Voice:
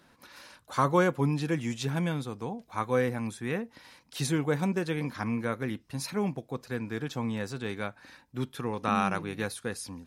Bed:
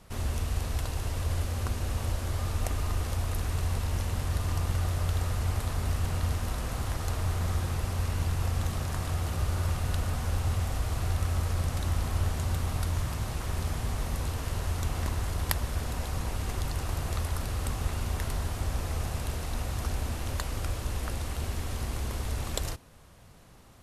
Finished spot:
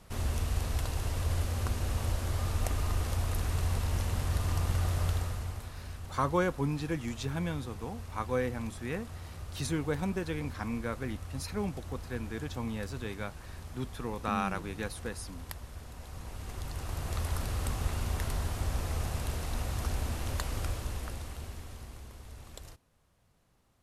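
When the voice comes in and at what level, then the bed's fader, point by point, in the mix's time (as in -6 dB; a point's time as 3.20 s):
5.40 s, -4.5 dB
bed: 5.08 s -1 dB
5.76 s -13.5 dB
15.93 s -13.5 dB
17.31 s -1.5 dB
20.63 s -1.5 dB
22.14 s -15.5 dB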